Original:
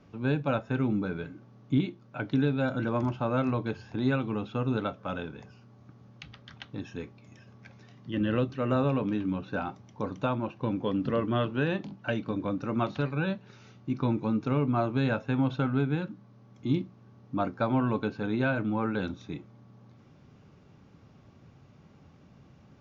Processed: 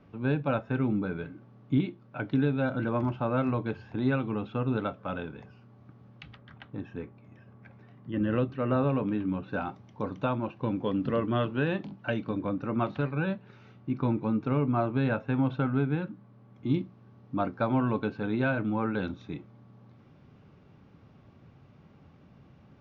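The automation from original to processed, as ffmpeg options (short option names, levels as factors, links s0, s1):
-af "asetnsamples=n=441:p=0,asendcmd='6.37 lowpass f 1900;8.32 lowpass f 2700;9.49 lowpass f 3900;12.39 lowpass f 2800;16.7 lowpass f 3900',lowpass=3200"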